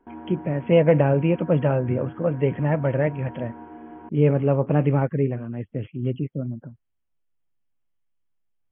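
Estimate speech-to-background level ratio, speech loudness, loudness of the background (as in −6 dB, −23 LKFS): 18.5 dB, −23.0 LKFS, −41.5 LKFS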